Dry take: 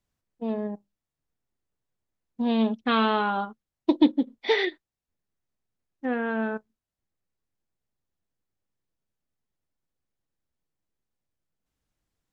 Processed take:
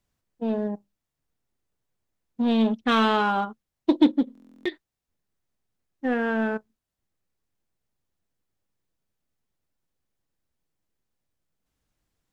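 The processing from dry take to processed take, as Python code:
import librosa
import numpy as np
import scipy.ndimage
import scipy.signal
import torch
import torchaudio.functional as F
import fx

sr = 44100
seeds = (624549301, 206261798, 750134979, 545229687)

p1 = np.clip(x, -10.0 ** (-25.0 / 20.0), 10.0 ** (-25.0 / 20.0))
p2 = x + (p1 * librosa.db_to_amplitude(-6.0))
y = fx.buffer_glitch(p2, sr, at_s=(4.33,), block=1024, repeats=13)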